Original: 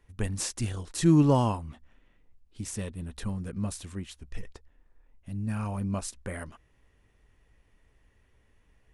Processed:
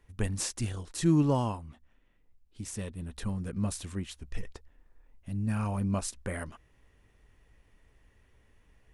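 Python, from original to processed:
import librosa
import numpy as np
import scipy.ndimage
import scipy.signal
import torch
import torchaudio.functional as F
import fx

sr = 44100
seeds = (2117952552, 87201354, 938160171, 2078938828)

y = fx.rider(x, sr, range_db=4, speed_s=2.0)
y = y * 10.0 ** (-2.5 / 20.0)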